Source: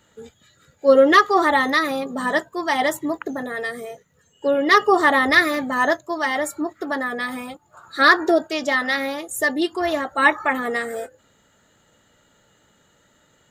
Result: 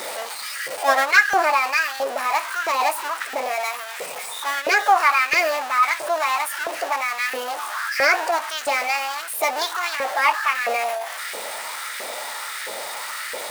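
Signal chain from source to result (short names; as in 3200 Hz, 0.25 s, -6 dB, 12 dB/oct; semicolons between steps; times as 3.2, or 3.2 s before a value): zero-crossing step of -19.5 dBFS; formant shift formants +4 st; LFO high-pass saw up 1.5 Hz 500–1700 Hz; gain -6.5 dB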